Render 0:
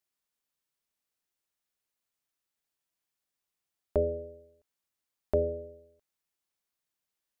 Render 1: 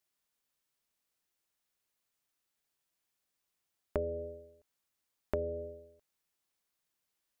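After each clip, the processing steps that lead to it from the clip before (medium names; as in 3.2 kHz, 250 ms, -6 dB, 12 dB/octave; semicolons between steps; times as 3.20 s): compression 5:1, threshold -34 dBFS, peak gain reduction 11.5 dB; trim +2.5 dB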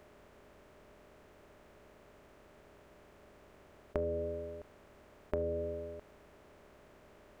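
spectral levelling over time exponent 0.4; trim -2.5 dB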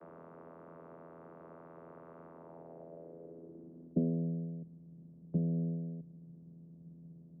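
vocoder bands 16, saw 83.2 Hz; low-pass sweep 1.2 kHz -> 170 Hz, 2.24–4.32 s; trim +7.5 dB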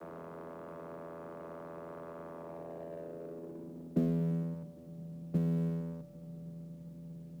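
companding laws mixed up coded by mu; on a send: feedback echo behind a low-pass 115 ms, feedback 82%, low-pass 800 Hz, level -14 dB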